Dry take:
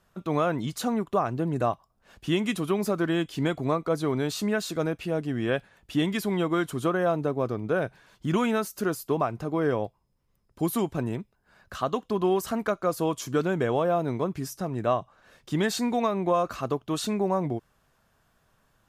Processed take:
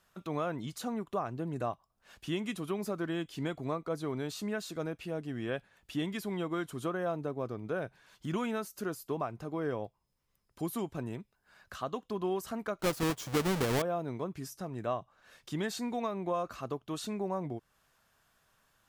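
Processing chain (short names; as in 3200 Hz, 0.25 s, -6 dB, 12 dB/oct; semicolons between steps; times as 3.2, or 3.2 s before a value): 12.79–13.82 half-waves squared off; mismatched tape noise reduction encoder only; gain -9 dB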